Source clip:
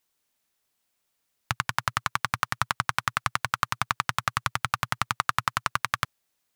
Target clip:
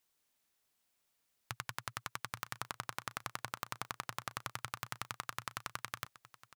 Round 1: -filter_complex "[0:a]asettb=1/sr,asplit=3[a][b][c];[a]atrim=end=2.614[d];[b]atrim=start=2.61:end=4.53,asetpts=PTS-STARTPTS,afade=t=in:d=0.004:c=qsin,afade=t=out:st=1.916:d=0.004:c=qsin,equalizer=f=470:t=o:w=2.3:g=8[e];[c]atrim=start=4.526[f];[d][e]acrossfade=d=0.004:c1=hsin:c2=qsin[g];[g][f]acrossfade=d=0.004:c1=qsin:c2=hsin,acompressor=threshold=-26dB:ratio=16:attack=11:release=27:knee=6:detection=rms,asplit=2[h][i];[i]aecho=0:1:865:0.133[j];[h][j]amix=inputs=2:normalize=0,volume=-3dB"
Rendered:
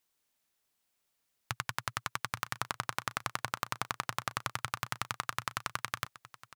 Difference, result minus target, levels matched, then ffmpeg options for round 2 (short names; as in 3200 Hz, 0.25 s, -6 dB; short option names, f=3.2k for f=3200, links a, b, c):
compressor: peak gain reduction -7 dB
-filter_complex "[0:a]asettb=1/sr,asplit=3[a][b][c];[a]atrim=end=2.614[d];[b]atrim=start=2.61:end=4.53,asetpts=PTS-STARTPTS,afade=t=in:d=0.004:c=qsin,afade=t=out:st=1.916:d=0.004:c=qsin,equalizer=f=470:t=o:w=2.3:g=8[e];[c]atrim=start=4.526[f];[d][e]acrossfade=d=0.004:c1=hsin:c2=qsin[g];[g][f]acrossfade=d=0.004:c1=qsin:c2=hsin,acompressor=threshold=-33.5dB:ratio=16:attack=11:release=27:knee=6:detection=rms,asplit=2[h][i];[i]aecho=0:1:865:0.133[j];[h][j]amix=inputs=2:normalize=0,volume=-3dB"